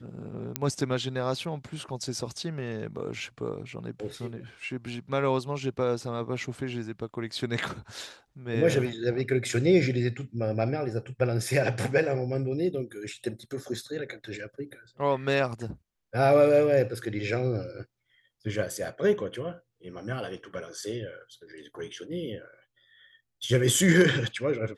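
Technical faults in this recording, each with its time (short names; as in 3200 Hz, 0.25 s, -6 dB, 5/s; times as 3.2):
0.56 pop -9 dBFS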